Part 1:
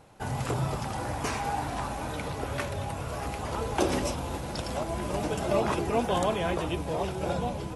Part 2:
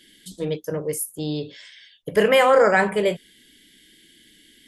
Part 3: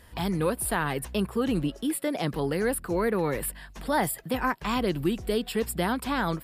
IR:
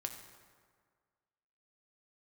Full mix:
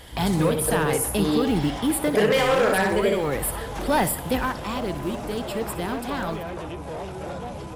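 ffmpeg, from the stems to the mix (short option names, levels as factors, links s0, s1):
-filter_complex "[0:a]asoftclip=type=tanh:threshold=0.0376,acrossover=split=460|1800[s0][s1][s2];[s0]acompressor=threshold=0.0126:ratio=4[s3];[s1]acompressor=threshold=0.0141:ratio=4[s4];[s2]acompressor=threshold=0.00282:ratio=4[s5];[s3][s4][s5]amix=inputs=3:normalize=0,volume=0.668[s6];[1:a]aeval=exprs='0.299*(abs(mod(val(0)/0.299+3,4)-2)-1)':c=same,volume=0.596,asplit=2[s7][s8];[s8]volume=0.668[s9];[2:a]asoftclip=type=tanh:threshold=0.119,acrusher=bits=8:mode=log:mix=0:aa=0.000001,volume=0.891,afade=t=out:st=4.35:d=0.2:silence=0.421697,asplit=2[s10][s11];[s11]volume=0.178[s12];[s9][s12]amix=inputs=2:normalize=0,aecho=0:1:63|126|189|252|315:1|0.36|0.13|0.0467|0.0168[s13];[s6][s7][s10][s13]amix=inputs=4:normalize=0,acontrast=80,alimiter=limit=0.251:level=0:latency=1:release=397"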